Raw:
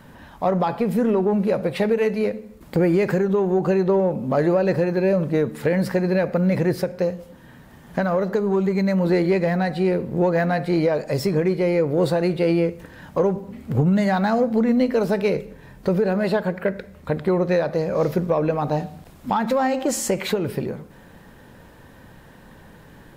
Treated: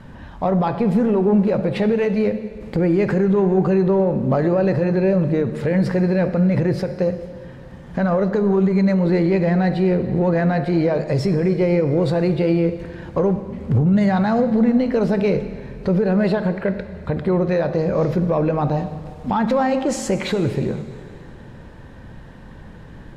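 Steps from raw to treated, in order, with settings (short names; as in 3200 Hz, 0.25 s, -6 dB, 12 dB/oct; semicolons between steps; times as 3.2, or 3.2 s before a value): low shelf 160 Hz +9.5 dB; limiter -12.5 dBFS, peak gain reduction 8 dB; air absorption 67 m; on a send: reverb RT60 2.6 s, pre-delay 4 ms, DRR 11.5 dB; on the sum: gain +2 dB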